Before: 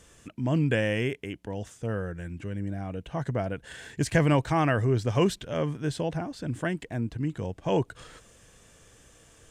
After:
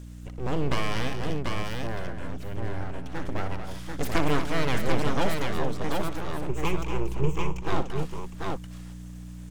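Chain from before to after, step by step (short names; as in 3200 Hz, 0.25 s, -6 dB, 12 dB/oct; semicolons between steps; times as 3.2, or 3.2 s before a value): full-wave rectifier; hum 60 Hz, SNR 12 dB; 6.49–7.61 ripple EQ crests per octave 0.73, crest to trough 15 dB; on a send: tapped delay 61/233/739 ms -12.5/-9.5/-3.5 dB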